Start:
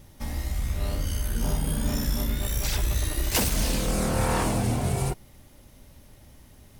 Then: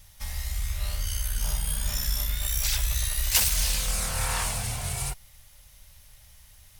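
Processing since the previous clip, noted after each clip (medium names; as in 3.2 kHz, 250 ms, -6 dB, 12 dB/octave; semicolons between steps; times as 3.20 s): amplifier tone stack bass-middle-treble 10-0-10; trim +5 dB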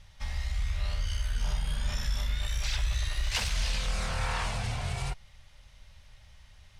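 low-pass 4 kHz 12 dB/octave; in parallel at 0 dB: peak limiter -24.5 dBFS, peak gain reduction 9 dB; on the sum: trim -5.5 dB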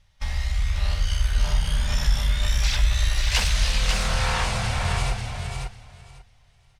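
gate -43 dBFS, range -14 dB; on a send: feedback delay 543 ms, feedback 17%, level -5 dB; on the sum: trim +7 dB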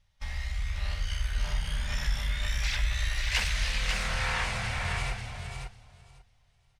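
dynamic bell 2 kHz, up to +8 dB, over -44 dBFS, Q 1.4; trim -8.5 dB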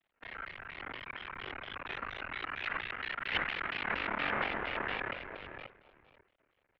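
half-wave rectifier; mistuned SSB -270 Hz 250–3000 Hz; vibrato with a chosen wave square 4.3 Hz, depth 250 cents; trim +3 dB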